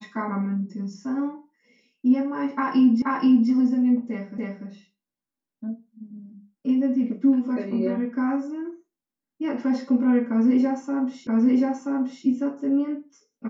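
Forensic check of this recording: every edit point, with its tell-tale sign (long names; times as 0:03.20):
0:03.02: the same again, the last 0.48 s
0:04.38: the same again, the last 0.29 s
0:11.27: the same again, the last 0.98 s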